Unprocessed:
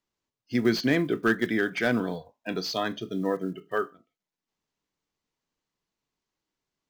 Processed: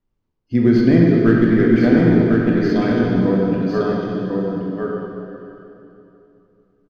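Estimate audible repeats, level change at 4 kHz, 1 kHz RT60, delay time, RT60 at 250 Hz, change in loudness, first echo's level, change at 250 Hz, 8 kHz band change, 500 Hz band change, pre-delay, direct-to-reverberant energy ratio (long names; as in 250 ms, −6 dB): 1, −2.0 dB, 2.9 s, 1,050 ms, 3.3 s, +11.5 dB, −4.0 dB, +14.5 dB, can't be measured, +11.5 dB, 12 ms, −5.0 dB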